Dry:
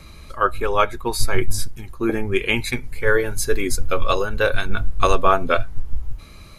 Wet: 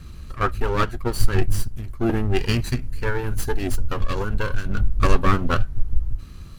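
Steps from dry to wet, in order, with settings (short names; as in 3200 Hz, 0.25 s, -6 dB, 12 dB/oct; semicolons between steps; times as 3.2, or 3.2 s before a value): minimum comb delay 0.69 ms; 2.61–4.78 compressor, threshold -19 dBFS, peak gain reduction 7 dB; low shelf 390 Hz +10 dB; gain -4.5 dB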